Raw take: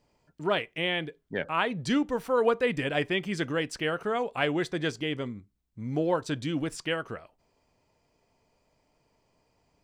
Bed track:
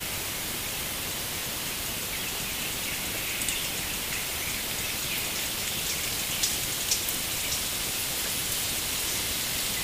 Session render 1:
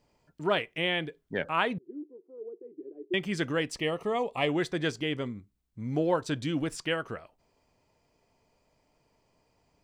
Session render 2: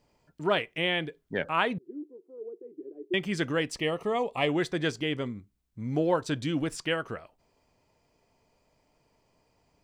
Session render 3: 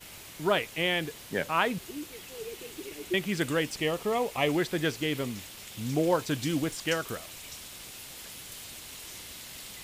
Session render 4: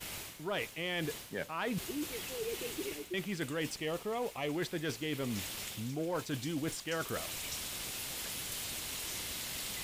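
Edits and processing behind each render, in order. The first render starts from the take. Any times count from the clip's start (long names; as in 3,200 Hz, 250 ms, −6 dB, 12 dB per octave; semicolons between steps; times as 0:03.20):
0:01.78–0:03.14: flat-topped band-pass 360 Hz, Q 5.4; 0:03.72–0:04.49: Butterworth band-reject 1,500 Hz, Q 2.8
level +1 dB
mix in bed track −14.5 dB
reversed playback; downward compressor 6 to 1, threshold −37 dBFS, peak gain reduction 15.5 dB; reversed playback; leveller curve on the samples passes 1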